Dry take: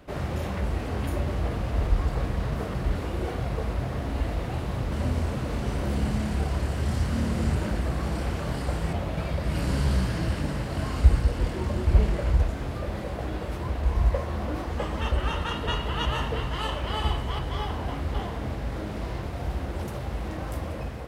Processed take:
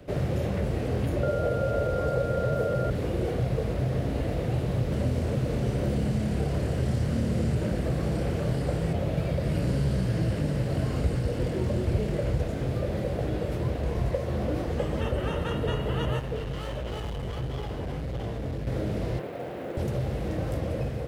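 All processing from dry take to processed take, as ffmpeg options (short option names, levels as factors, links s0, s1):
-filter_complex "[0:a]asettb=1/sr,asplit=3[s0][s1][s2];[s0]atrim=end=1.234[s3];[s1]atrim=start=1.23:end=2.9,asetpts=PTS-STARTPTS,afade=t=in:d=0.004:c=qsin,afade=t=out:st=1.666:d=0.004:c=qsin,highpass=82,equalizer=f=560:t=o:w=0.67:g=14.5,aeval=exprs='val(0)+0.0398*sin(2*PI*1400*n/s)':c=same[s4];[s2]atrim=start=2.896[s5];[s3][s4]acrossfade=d=0.004:c1=hsin:c2=qsin[s6];[s6][s5]acrossfade=d=0.004:c1=qsin:c2=hsin,asettb=1/sr,asplit=3[s7][s8][s9];[s7]atrim=end=16.194[s10];[s8]atrim=start=16.19:end=18.67,asetpts=PTS-STARTPTS,afade=t=in:d=0.004:c=qsin,afade=t=out:st=2.476:d=0.004:c=qsin,flanger=delay=16:depth=5.3:speed=1.5,asoftclip=type=hard:threshold=0.0251[s11];[s9]atrim=start=18.666[s12];[s10][s11]acrossfade=d=0.004:c1=hsin:c2=qsin[s13];[s13][s12]acrossfade=d=0.004:c1=qsin:c2=hsin,asettb=1/sr,asplit=3[s14][s15][s16];[s14]atrim=end=19.194[s17];[s15]atrim=start=19.19:end=19.77,asetpts=PTS-STARTPTS,afade=t=in:d=0.004:c=qsin,afade=t=out:st=0.576:d=0.004:c=qsin,highpass=310,lowpass=2900,acrusher=bits=6:mode=log:mix=0:aa=0.000001[s18];[s16]atrim=start=19.766[s19];[s17][s18]acrossfade=d=0.004:c1=hsin:c2=qsin[s20];[s20][s19]acrossfade=d=0.004:c1=qsin:c2=hsin,equalizer=f=125:t=o:w=1:g=9,equalizer=f=500:t=o:w=1:g=8,equalizer=f=1000:t=o:w=1:g=-7,acrossover=split=110|2300|7600[s21][s22][s23][s24];[s21]acompressor=threshold=0.0251:ratio=4[s25];[s22]acompressor=threshold=0.0562:ratio=4[s26];[s23]acompressor=threshold=0.00355:ratio=4[s27];[s24]acompressor=threshold=0.00158:ratio=4[s28];[s25][s26][s27][s28]amix=inputs=4:normalize=0"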